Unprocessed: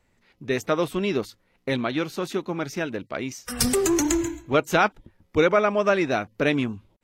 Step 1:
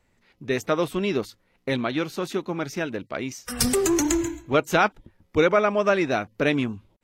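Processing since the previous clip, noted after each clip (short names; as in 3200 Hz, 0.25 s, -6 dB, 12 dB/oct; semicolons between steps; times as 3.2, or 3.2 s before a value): nothing audible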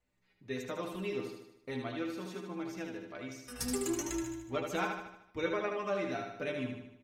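metallic resonator 60 Hz, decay 0.3 s, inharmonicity 0.008; feedback echo 76 ms, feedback 52%, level -5 dB; gain -7.5 dB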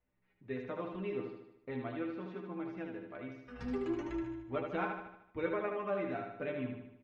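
Bessel low-pass 2000 Hz, order 4; gain -1 dB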